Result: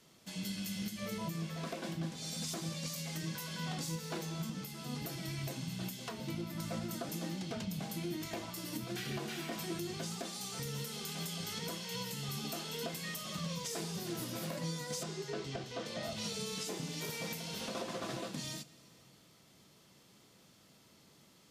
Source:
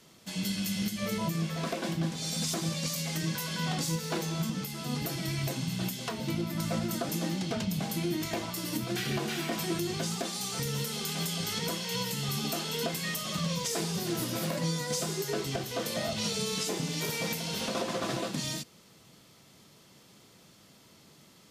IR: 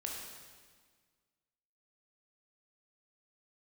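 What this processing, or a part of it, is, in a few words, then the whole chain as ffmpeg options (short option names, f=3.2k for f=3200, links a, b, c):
compressed reverb return: -filter_complex "[0:a]asettb=1/sr,asplit=3[a][b][c];[a]atrim=end=15.034[d];[b]atrim=start=15.03:end=16.03,asetpts=PTS-STARTPTS,afade=t=in:d=0.004:c=qsin,afade=t=out:st=0.996:d=0.004:c=qsin,lowpass=5.9k[e];[c]atrim=start=16.026[f];[d][e]acrossfade=d=0.004:c1=hsin:c2=qsin[g];[g][f]acrossfade=d=0.004:c1=qsin:c2=hsin,asplit=2[h][i];[1:a]atrim=start_sample=2205[j];[i][j]afir=irnorm=-1:irlink=0,acompressor=threshold=-42dB:ratio=6,volume=-6dB[k];[h][k]amix=inputs=2:normalize=0,volume=-8.5dB"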